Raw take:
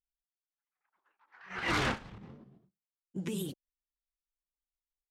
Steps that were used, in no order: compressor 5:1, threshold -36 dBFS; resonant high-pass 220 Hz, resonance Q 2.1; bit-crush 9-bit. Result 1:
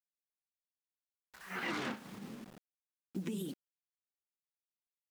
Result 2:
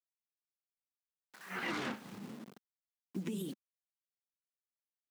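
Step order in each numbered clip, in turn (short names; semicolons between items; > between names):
resonant high-pass > bit-crush > compressor; bit-crush > resonant high-pass > compressor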